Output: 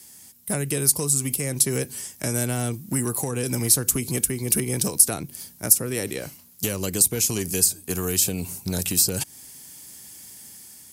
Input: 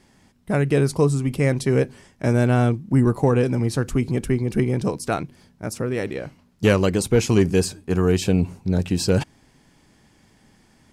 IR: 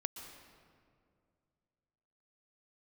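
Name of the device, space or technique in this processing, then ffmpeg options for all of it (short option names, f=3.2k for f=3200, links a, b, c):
FM broadcast chain: -filter_complex "[0:a]highpass=f=49:w=0.5412,highpass=f=49:w=1.3066,dynaudnorm=f=360:g=5:m=5dB,acrossover=split=370|900[a][b][c];[a]acompressor=threshold=-19dB:ratio=4[d];[b]acompressor=threshold=-26dB:ratio=4[e];[c]acompressor=threshold=-33dB:ratio=4[f];[d][e][f]amix=inputs=3:normalize=0,aemphasis=mode=production:type=75fm,alimiter=limit=-12.5dB:level=0:latency=1:release=313,asoftclip=type=hard:threshold=-14dB,lowpass=f=15k:w=0.5412,lowpass=f=15k:w=1.3066,aemphasis=mode=production:type=75fm,volume=-3.5dB"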